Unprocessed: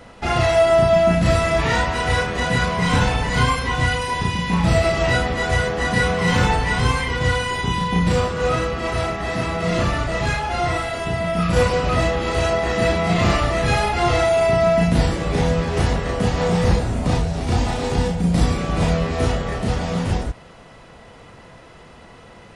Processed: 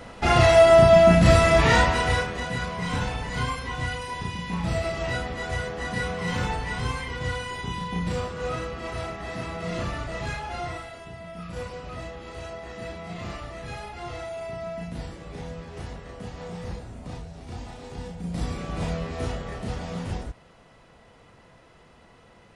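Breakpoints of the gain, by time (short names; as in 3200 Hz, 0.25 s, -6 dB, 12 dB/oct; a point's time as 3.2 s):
1.85 s +1 dB
2.48 s -10 dB
10.55 s -10 dB
11.1 s -18 dB
17.9 s -18 dB
18.6 s -10 dB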